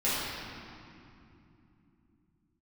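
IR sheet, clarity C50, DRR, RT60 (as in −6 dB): −3.5 dB, −11.5 dB, 2.9 s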